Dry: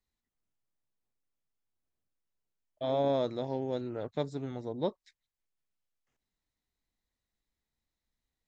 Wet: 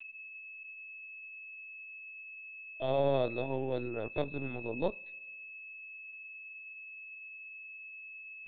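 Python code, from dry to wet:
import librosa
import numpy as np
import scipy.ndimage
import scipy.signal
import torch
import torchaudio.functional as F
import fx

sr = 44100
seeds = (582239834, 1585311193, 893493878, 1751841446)

y = x + 10.0 ** (-45.0 / 20.0) * np.sin(2.0 * np.pi * 2600.0 * np.arange(len(x)) / sr)
y = fx.lpc_vocoder(y, sr, seeds[0], excitation='pitch_kept', order=16)
y = fx.rev_double_slope(y, sr, seeds[1], early_s=0.29, late_s=1.6, knee_db=-19, drr_db=19.0)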